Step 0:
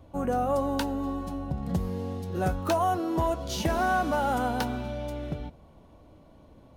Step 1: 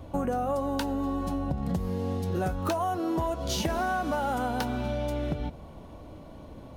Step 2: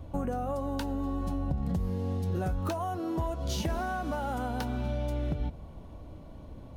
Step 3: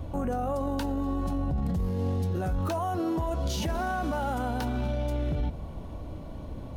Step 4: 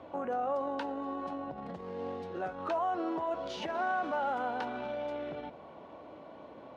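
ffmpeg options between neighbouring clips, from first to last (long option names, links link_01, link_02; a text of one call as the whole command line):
ffmpeg -i in.wav -af "acompressor=threshold=-35dB:ratio=6,volume=8.5dB" out.wav
ffmpeg -i in.wav -af "lowshelf=frequency=140:gain=9.5,volume=-5.5dB" out.wav
ffmpeg -i in.wav -af "alimiter=level_in=5.5dB:limit=-24dB:level=0:latency=1:release=12,volume=-5.5dB,volume=7dB" out.wav
ffmpeg -i in.wav -af "highpass=450,lowpass=2700" out.wav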